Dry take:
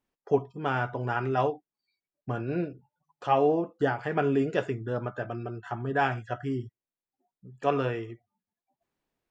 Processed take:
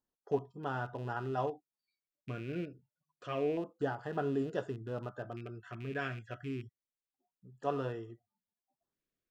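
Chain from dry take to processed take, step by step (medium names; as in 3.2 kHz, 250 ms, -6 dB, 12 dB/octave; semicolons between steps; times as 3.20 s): rattle on loud lows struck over -34 dBFS, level -33 dBFS; LFO notch square 0.28 Hz 840–2300 Hz; trim -8 dB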